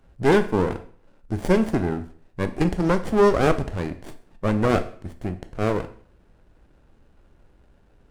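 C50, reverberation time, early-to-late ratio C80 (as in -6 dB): 14.0 dB, 0.50 s, 17.0 dB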